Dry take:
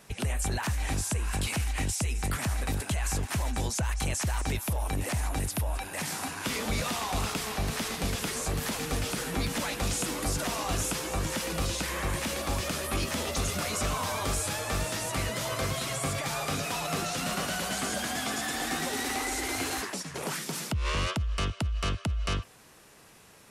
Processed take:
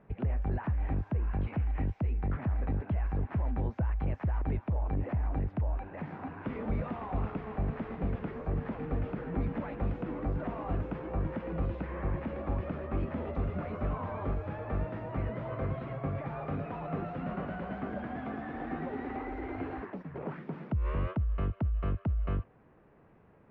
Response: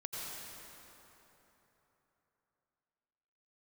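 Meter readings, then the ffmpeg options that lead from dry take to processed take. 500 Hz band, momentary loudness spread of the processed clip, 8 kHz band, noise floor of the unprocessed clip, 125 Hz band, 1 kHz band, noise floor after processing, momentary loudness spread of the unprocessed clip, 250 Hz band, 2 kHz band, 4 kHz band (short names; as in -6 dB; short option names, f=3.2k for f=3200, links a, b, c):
-3.0 dB, 6 LU, under -40 dB, -51 dBFS, 0.0 dB, -6.5 dB, -60 dBFS, 2 LU, -1.0 dB, -13.0 dB, under -25 dB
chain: -af "lowpass=f=2.3k:w=0.5412,lowpass=f=2.3k:w=1.3066,tiltshelf=f=1.2k:g=8.5,volume=-8.5dB"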